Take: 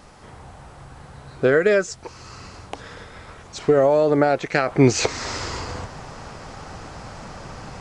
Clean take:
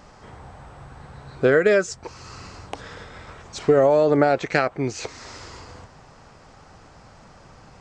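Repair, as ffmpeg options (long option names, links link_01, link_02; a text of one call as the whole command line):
ffmpeg -i in.wav -af "agate=range=-21dB:threshold=-35dB,asetnsamples=nb_out_samples=441:pad=0,asendcmd='4.68 volume volume -11dB',volume=0dB" out.wav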